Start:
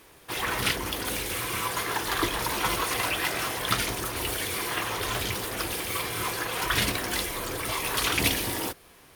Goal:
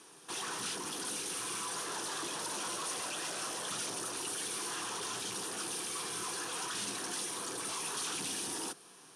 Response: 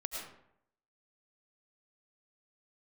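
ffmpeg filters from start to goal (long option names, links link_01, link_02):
-filter_complex "[0:a]asettb=1/sr,asplit=3[link_01][link_02][link_03];[link_01]atrim=end=1.764[link_04];[link_02]atrim=start=1.76:end=4.13,asetpts=PTS-STARTPTS,afade=type=in:duration=0.004:curve=qsin,afade=type=out:start_time=2.366:duration=0.004:curve=qsin,equalizer=frequency=580:width=6.3:gain=11[link_05];[link_03]atrim=start=4.126[link_06];[link_04][link_05]acrossfade=duration=0.004:curve1=hsin:curve2=qsin[link_07];[link_07][link_06]acrossfade=duration=0.004:curve1=qsin:curve2=hsin,aeval=exprs='(tanh(63.1*val(0)+0.45)-tanh(0.45))/63.1':channel_layout=same,highpass=frequency=160:width=0.5412,highpass=frequency=160:width=1.3066,equalizer=frequency=240:width_type=q:width=4:gain=-3,equalizer=frequency=580:width_type=q:width=4:gain=-9,equalizer=frequency=2100:width_type=q:width=4:gain=-10,equalizer=frequency=5900:width_type=q:width=4:gain=6,equalizer=frequency=9400:width_type=q:width=4:gain=10,lowpass=frequency=9900:width=0.5412,lowpass=frequency=9900:width=1.3066"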